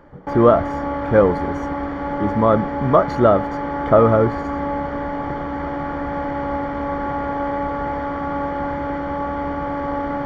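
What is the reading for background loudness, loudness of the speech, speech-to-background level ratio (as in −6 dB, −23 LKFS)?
−25.0 LKFS, −17.5 LKFS, 7.5 dB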